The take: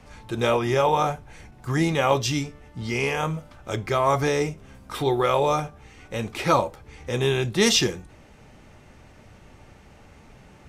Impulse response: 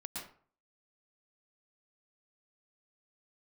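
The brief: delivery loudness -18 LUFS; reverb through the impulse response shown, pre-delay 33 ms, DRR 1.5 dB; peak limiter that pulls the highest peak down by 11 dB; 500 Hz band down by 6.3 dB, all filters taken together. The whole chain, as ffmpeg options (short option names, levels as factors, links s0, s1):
-filter_complex "[0:a]equalizer=f=500:t=o:g=-8,alimiter=limit=0.126:level=0:latency=1,asplit=2[s0][s1];[1:a]atrim=start_sample=2205,adelay=33[s2];[s1][s2]afir=irnorm=-1:irlink=0,volume=0.944[s3];[s0][s3]amix=inputs=2:normalize=0,volume=2.99"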